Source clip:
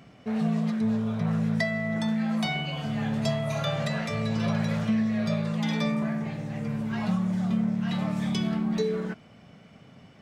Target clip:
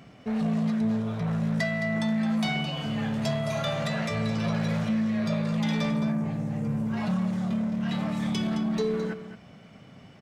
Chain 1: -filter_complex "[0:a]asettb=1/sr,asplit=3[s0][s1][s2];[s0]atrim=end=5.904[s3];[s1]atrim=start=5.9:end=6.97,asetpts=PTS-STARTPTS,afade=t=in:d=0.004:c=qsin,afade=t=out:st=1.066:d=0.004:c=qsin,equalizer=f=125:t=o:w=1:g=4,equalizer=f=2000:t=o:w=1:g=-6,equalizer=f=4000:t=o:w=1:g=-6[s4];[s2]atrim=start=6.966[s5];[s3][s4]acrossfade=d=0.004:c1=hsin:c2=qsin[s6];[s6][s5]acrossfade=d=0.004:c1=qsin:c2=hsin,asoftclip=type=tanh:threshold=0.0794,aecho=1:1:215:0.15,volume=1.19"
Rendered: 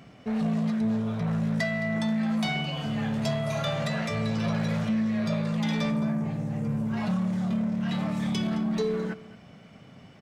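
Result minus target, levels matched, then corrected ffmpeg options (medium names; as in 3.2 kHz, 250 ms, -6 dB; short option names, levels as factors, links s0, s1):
echo-to-direct -6 dB
-filter_complex "[0:a]asettb=1/sr,asplit=3[s0][s1][s2];[s0]atrim=end=5.904[s3];[s1]atrim=start=5.9:end=6.97,asetpts=PTS-STARTPTS,afade=t=in:d=0.004:c=qsin,afade=t=out:st=1.066:d=0.004:c=qsin,equalizer=f=125:t=o:w=1:g=4,equalizer=f=2000:t=o:w=1:g=-6,equalizer=f=4000:t=o:w=1:g=-6[s4];[s2]atrim=start=6.966[s5];[s3][s4]acrossfade=d=0.004:c1=hsin:c2=qsin[s6];[s6][s5]acrossfade=d=0.004:c1=qsin:c2=hsin,asoftclip=type=tanh:threshold=0.0794,aecho=1:1:215:0.299,volume=1.19"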